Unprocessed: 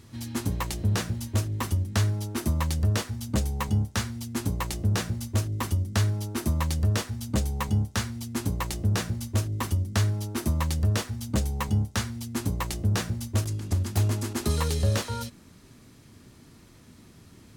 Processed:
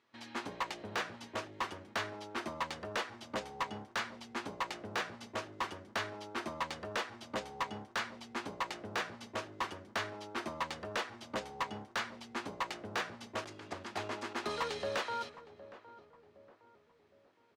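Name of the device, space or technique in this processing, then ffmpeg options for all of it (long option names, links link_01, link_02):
walkie-talkie: -filter_complex "[0:a]highpass=590,lowpass=2800,asoftclip=type=hard:threshold=-30dB,agate=range=-13dB:threshold=-57dB:ratio=16:detection=peak,asplit=2[link_01][link_02];[link_02]adelay=763,lowpass=frequency=990:poles=1,volume=-14.5dB,asplit=2[link_03][link_04];[link_04]adelay=763,lowpass=frequency=990:poles=1,volume=0.5,asplit=2[link_05][link_06];[link_06]adelay=763,lowpass=frequency=990:poles=1,volume=0.5,asplit=2[link_07][link_08];[link_08]adelay=763,lowpass=frequency=990:poles=1,volume=0.5,asplit=2[link_09][link_10];[link_10]adelay=763,lowpass=frequency=990:poles=1,volume=0.5[link_11];[link_01][link_03][link_05][link_07][link_09][link_11]amix=inputs=6:normalize=0,volume=1dB"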